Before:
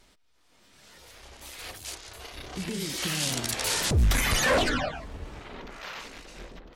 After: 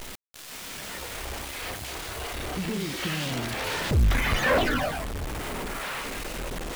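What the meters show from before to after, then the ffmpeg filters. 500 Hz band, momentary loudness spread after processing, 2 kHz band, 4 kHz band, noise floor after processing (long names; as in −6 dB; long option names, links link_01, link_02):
+2.0 dB, 12 LU, +2.0 dB, −1.5 dB, −41 dBFS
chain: -filter_complex "[0:a]aeval=exprs='val(0)+0.5*0.0266*sgn(val(0))':channel_layout=same,acrossover=split=3300[link_01][link_02];[link_02]acompressor=threshold=-42dB:ratio=4:attack=1:release=60[link_03];[link_01][link_03]amix=inputs=2:normalize=0,acrusher=bits=7:dc=4:mix=0:aa=0.000001"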